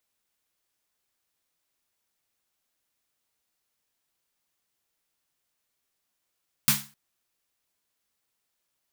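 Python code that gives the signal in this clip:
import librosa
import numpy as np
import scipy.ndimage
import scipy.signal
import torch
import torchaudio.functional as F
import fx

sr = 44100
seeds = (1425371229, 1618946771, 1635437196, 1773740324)

y = fx.drum_snare(sr, seeds[0], length_s=0.26, hz=140.0, second_hz=210.0, noise_db=9.5, noise_from_hz=890.0, decay_s=0.34, noise_decay_s=0.32)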